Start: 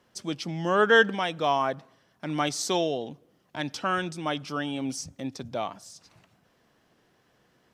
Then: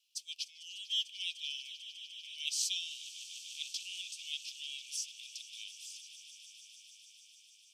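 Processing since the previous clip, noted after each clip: steep high-pass 2.5 kHz 96 dB/octave; echo with a slow build-up 149 ms, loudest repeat 5, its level -17 dB; trim -2 dB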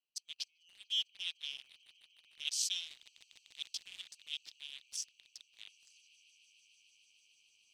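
local Wiener filter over 25 samples; reverse; upward compressor, threshold -57 dBFS; reverse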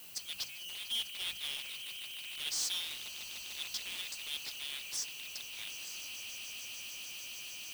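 hum notches 60/120/180 Hz; power-law waveshaper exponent 0.35; added noise violet -45 dBFS; trim -8 dB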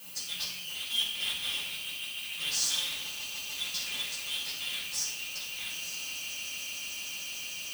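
reverberation RT60 0.80 s, pre-delay 3 ms, DRR -5.5 dB

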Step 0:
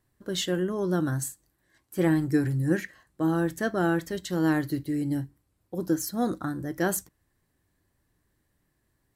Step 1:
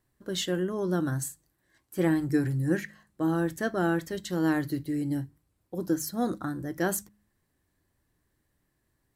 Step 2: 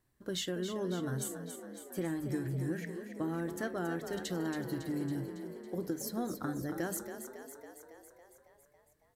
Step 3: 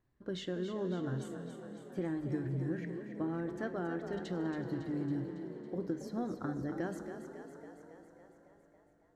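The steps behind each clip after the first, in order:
de-hum 51.76 Hz, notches 4; trim -1.5 dB
compression, threshold -31 dBFS, peak gain reduction 10.5 dB; on a send: frequency-shifting echo 277 ms, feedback 64%, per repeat +37 Hz, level -9 dB; on the sum: trim -2 dB
tape spacing loss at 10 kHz 22 dB; reverberation RT60 5.0 s, pre-delay 13 ms, DRR 12 dB

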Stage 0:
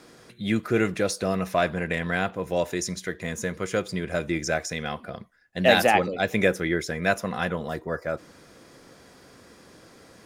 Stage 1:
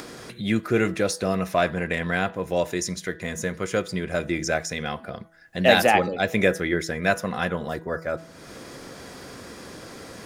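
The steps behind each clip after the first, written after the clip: de-hum 163.8 Hz, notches 12; upward compressor, threshold -32 dBFS; trim +1.5 dB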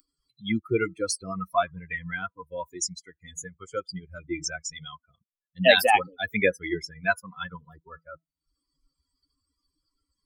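expander on every frequency bin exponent 3; bass shelf 390 Hz -7 dB; trim +5.5 dB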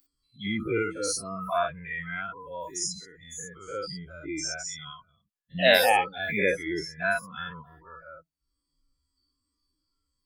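every event in the spectrogram widened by 120 ms; trim -7 dB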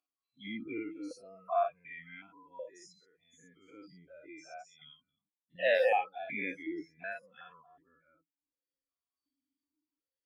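stepped vowel filter 2.7 Hz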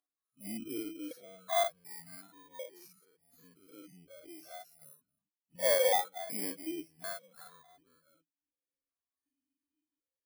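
bit-reversed sample order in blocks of 16 samples

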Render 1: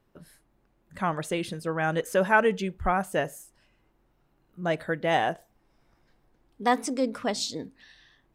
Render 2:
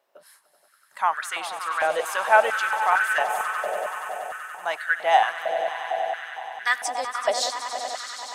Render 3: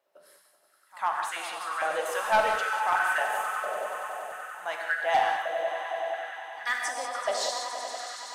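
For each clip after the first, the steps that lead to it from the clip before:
tilt shelf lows -4.5 dB, about 1.4 kHz; echo with a slow build-up 95 ms, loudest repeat 5, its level -13 dB; step-sequenced high-pass 4.4 Hz 610–1500 Hz
hard clipper -11.5 dBFS, distortion -18 dB; pre-echo 98 ms -23 dB; gated-style reverb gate 220 ms flat, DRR 1.5 dB; trim -6.5 dB

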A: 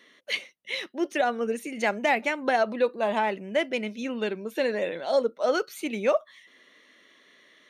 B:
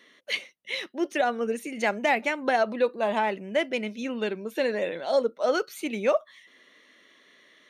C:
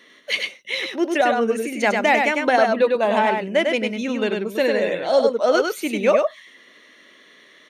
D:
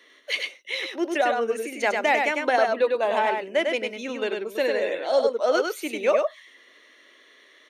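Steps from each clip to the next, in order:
no audible change
delay 100 ms -4 dB; trim +6 dB
high-pass 290 Hz 24 dB/octave; trim -4 dB

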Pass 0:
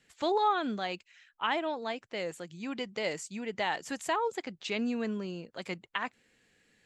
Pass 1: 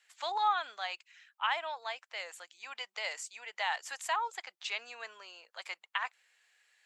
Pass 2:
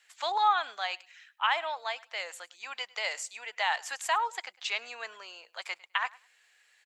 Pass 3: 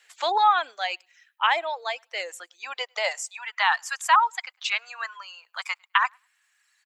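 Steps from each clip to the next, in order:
high-pass 780 Hz 24 dB/octave
feedback delay 103 ms, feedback 18%, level -23 dB; trim +4.5 dB
high-pass sweep 350 Hz -> 1.1 kHz, 2.59–3.55 s; reverb removal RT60 1.9 s; trim +5 dB

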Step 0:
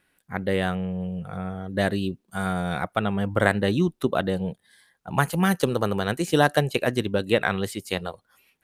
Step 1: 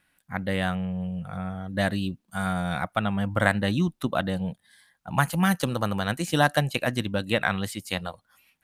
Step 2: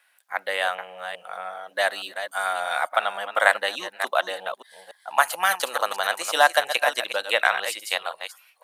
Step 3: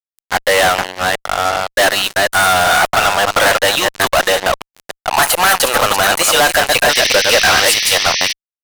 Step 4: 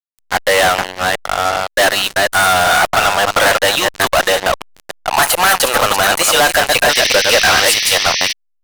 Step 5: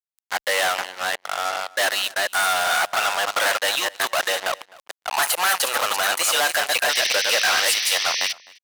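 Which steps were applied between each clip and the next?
peaking EQ 410 Hz -12.5 dB 0.51 oct
chunks repeated in reverse 289 ms, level -9 dB; high-pass 580 Hz 24 dB/octave; trim +5.5 dB
fuzz box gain 37 dB, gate -37 dBFS; painted sound noise, 6.89–8.33 s, 1.7–6.2 kHz -22 dBFS; trim +4.5 dB
hysteresis with a dead band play -39.5 dBFS
high-pass 840 Hz 6 dB/octave; echo from a far wall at 44 m, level -22 dB; trim -7 dB

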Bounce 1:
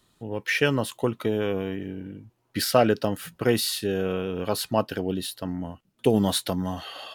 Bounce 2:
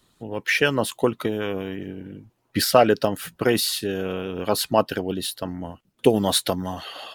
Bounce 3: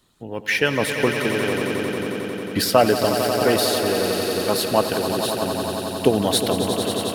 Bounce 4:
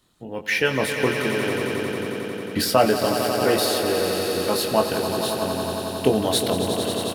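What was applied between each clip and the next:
harmonic-percussive split harmonic -8 dB; trim +5.5 dB
echo with a slow build-up 90 ms, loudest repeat 5, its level -10 dB
doubling 23 ms -6 dB; trim -2.5 dB

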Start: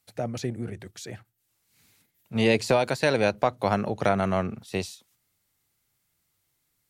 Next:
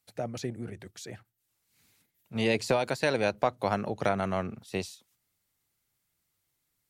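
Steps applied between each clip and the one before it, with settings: harmonic-percussive split harmonic -3 dB; trim -3 dB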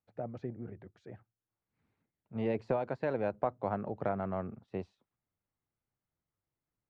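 low-pass 1.2 kHz 12 dB/octave; trim -5 dB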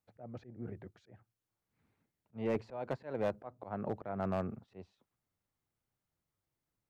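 slow attack 243 ms; overload inside the chain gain 28 dB; trim +2 dB

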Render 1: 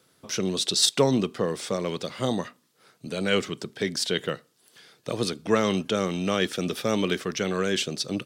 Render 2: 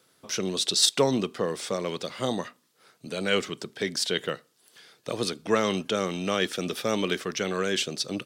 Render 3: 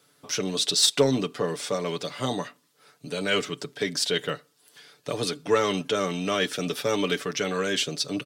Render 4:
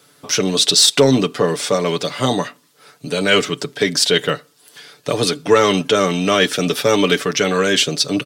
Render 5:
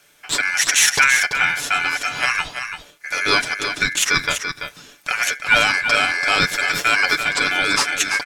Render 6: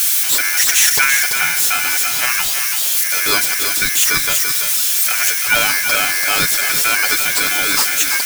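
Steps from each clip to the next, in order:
bass shelf 230 Hz -6.5 dB
comb 6.9 ms, depth 64%; in parallel at -9 dB: overload inside the chain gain 18.5 dB; on the sum: trim -2.5 dB
loudness maximiser +11.5 dB; trim -1 dB
ring modulator 1.9 kHz; on a send: delay 336 ms -8 dB
zero-crossing glitches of -8.5 dBFS; trim -1 dB

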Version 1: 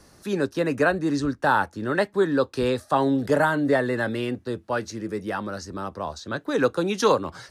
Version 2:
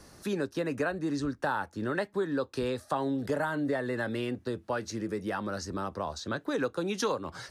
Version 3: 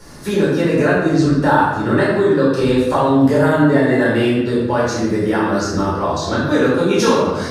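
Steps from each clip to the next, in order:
compression 3:1, threshold -30 dBFS, peak gain reduction 12 dB
simulated room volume 520 m³, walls mixed, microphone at 4.5 m; trim +5 dB

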